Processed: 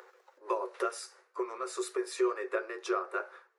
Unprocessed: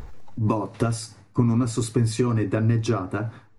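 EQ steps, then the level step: rippled Chebyshev high-pass 360 Hz, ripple 9 dB; 0.0 dB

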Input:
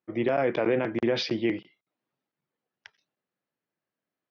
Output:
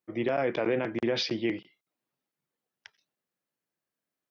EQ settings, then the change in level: high shelf 4100 Hz +7 dB; -3.0 dB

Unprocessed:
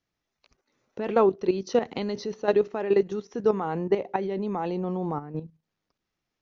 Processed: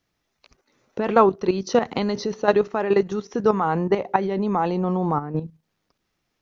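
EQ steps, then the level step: dynamic EQ 390 Hz, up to -6 dB, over -32 dBFS, Q 0.97; dynamic EQ 1200 Hz, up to +4 dB, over -46 dBFS, Q 1.6; dynamic EQ 2700 Hz, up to -3 dB, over -48 dBFS, Q 1; +8.0 dB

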